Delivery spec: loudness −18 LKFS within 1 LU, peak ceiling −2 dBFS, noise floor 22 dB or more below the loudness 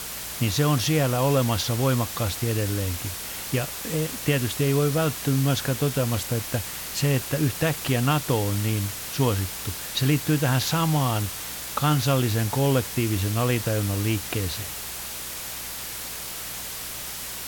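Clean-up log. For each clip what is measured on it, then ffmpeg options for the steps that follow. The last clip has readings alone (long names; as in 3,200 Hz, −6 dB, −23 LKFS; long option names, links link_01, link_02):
mains hum 60 Hz; hum harmonics up to 180 Hz; level of the hum −49 dBFS; background noise floor −35 dBFS; target noise floor −47 dBFS; integrated loudness −25.0 LKFS; sample peak −9.5 dBFS; target loudness −18.0 LKFS
→ -af "bandreject=frequency=60:width_type=h:width=4,bandreject=frequency=120:width_type=h:width=4,bandreject=frequency=180:width_type=h:width=4"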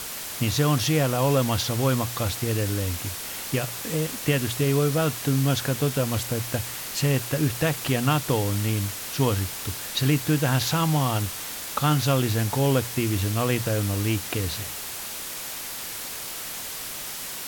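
mains hum none found; background noise floor −35 dBFS; target noise floor −47 dBFS
→ -af "afftdn=noise_reduction=12:noise_floor=-35"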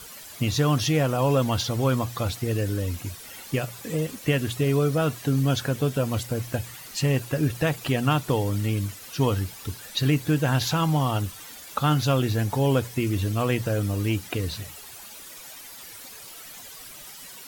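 background noise floor −43 dBFS; target noise floor −48 dBFS
→ -af "afftdn=noise_reduction=6:noise_floor=-43"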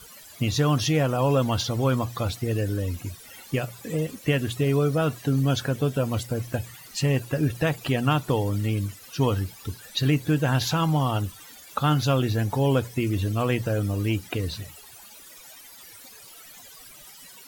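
background noise floor −47 dBFS; target noise floor −48 dBFS
→ -af "afftdn=noise_reduction=6:noise_floor=-47"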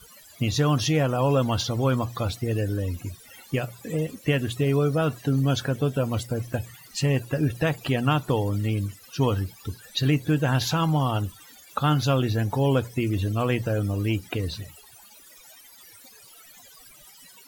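background noise floor −50 dBFS; integrated loudness −25.5 LKFS; sample peak −10.5 dBFS; target loudness −18.0 LKFS
→ -af "volume=7.5dB"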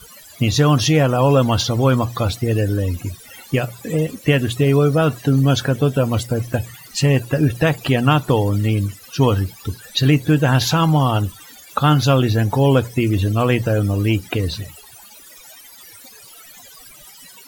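integrated loudness −18.0 LKFS; sample peak −3.0 dBFS; background noise floor −43 dBFS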